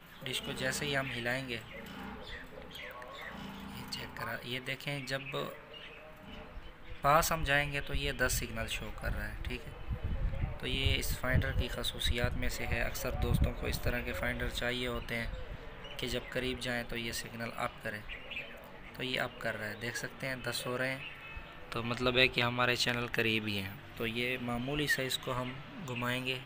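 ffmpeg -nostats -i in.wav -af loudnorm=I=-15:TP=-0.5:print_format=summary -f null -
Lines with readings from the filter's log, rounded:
Input Integrated:    -34.9 LUFS
Input True Peak:     -10.1 dBTP
Input LRA:             8.2 LU
Input Threshold:     -45.3 LUFS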